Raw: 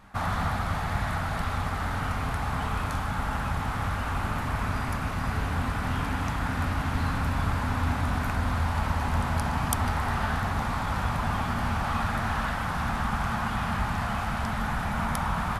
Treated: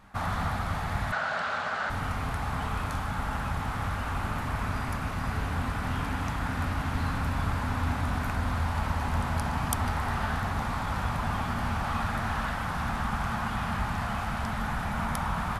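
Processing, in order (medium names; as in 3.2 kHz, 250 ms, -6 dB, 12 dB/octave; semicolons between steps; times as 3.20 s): 1.12–1.90 s: cabinet simulation 270–7500 Hz, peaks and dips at 300 Hz -10 dB, 600 Hz +8 dB, 1.5 kHz +10 dB, 2.9 kHz +4 dB, 4.2 kHz +4 dB; trim -2 dB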